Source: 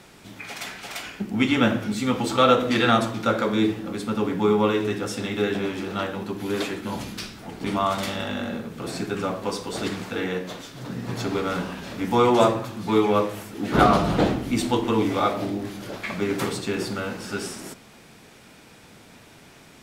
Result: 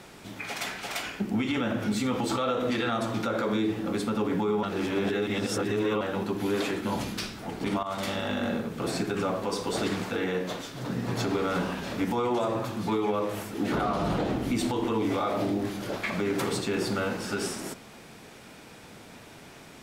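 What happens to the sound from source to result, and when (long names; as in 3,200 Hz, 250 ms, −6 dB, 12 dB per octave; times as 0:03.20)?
0:04.63–0:06.01: reverse
0:07.83–0:08.45: fade in equal-power, from −15.5 dB
whole clip: parametric band 610 Hz +2.5 dB 2.5 octaves; downward compressor 3 to 1, threshold −21 dBFS; brickwall limiter −19 dBFS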